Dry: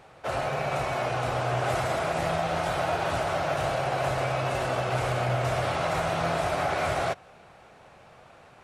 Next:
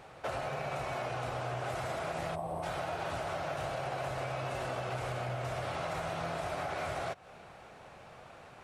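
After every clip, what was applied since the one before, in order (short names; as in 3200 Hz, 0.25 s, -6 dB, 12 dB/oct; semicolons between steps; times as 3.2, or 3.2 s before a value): compressor 6:1, threshold -34 dBFS, peak gain reduction 11 dB; spectral gain 2.35–2.63, 1200–7700 Hz -17 dB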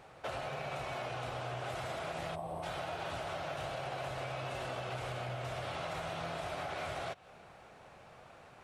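dynamic EQ 3300 Hz, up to +5 dB, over -59 dBFS, Q 1.6; gain -3.5 dB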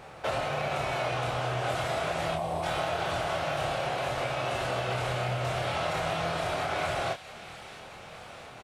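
doubler 26 ms -4.5 dB; thin delay 0.663 s, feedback 69%, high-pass 2200 Hz, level -12 dB; gain +8 dB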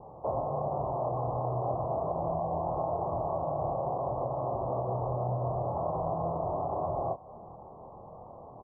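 steep low-pass 1100 Hz 96 dB/oct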